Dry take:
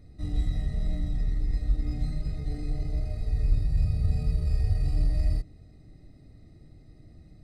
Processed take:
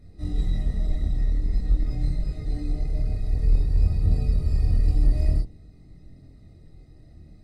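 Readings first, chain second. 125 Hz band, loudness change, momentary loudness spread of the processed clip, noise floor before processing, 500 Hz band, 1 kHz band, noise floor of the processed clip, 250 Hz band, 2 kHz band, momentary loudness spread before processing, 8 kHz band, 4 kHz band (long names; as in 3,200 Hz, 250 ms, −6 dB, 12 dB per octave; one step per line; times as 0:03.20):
+3.0 dB, +3.5 dB, 7 LU, −52 dBFS, +4.0 dB, +2.0 dB, −49 dBFS, +3.0 dB, +1.0 dB, 7 LU, can't be measured, +1.5 dB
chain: sub-octave generator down 1 octave, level −6 dB
multi-voice chorus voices 2, 0.48 Hz, delay 25 ms, depth 2.6 ms
level +4.5 dB
Ogg Vorbis 64 kbit/s 48,000 Hz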